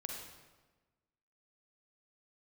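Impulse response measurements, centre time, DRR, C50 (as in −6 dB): 58 ms, 0.0 dB, 1.5 dB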